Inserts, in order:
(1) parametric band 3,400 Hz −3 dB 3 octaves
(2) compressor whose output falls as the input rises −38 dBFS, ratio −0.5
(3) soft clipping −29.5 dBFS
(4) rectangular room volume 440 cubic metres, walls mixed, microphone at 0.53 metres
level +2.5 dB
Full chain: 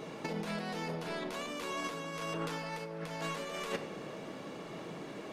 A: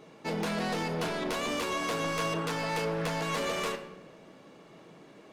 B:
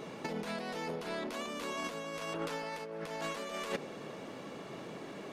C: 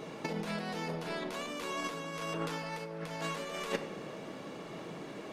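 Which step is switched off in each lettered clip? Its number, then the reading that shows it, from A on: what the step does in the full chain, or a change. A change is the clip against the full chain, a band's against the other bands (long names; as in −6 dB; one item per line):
2, change in crest factor −3.0 dB
4, echo-to-direct ratio −7.5 dB to none audible
3, distortion level −20 dB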